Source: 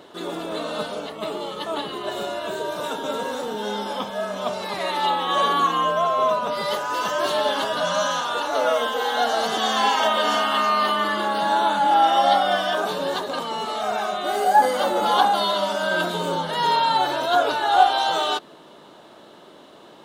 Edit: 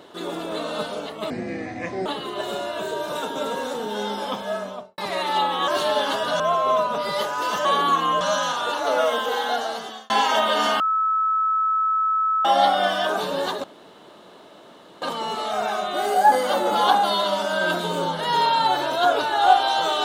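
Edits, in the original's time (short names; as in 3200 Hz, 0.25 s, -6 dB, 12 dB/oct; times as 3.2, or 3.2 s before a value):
1.3–1.74 speed 58%
4.2–4.66 studio fade out
5.36–5.92 swap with 7.17–7.89
9–9.78 fade out
10.48–12.13 bleep 1300 Hz -18 dBFS
13.32 insert room tone 1.38 s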